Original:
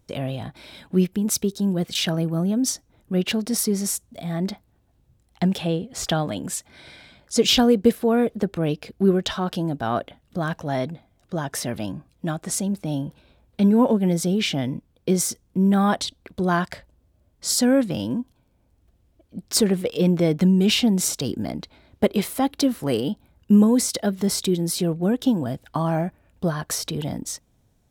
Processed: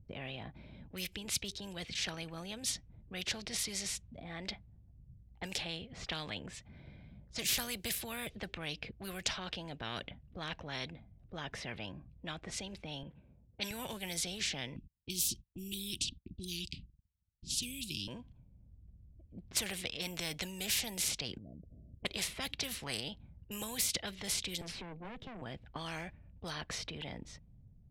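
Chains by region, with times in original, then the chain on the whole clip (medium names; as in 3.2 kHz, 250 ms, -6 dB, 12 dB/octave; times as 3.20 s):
13.03–13.71 s: frequency weighting D + level-controlled noise filter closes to 1.1 kHz, open at -20 dBFS + tape noise reduction on one side only decoder only
14.76–18.08 s: Chebyshev band-stop 360–2600 Hz, order 5 + gate -57 dBFS, range -37 dB + bass shelf 390 Hz +6.5 dB
21.38–22.05 s: steep low-pass 680 Hz 96 dB/octave + compression 2.5:1, threshold -48 dBFS
24.61–25.42 s: steep high-pass 150 Hz 72 dB/octave + valve stage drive 29 dB, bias 0.5 + three bands compressed up and down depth 40%
whole clip: level-controlled noise filter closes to 540 Hz, open at -15.5 dBFS; high-order bell 650 Hz -15 dB 2.9 oct; spectrum-flattening compressor 4:1; trim -7 dB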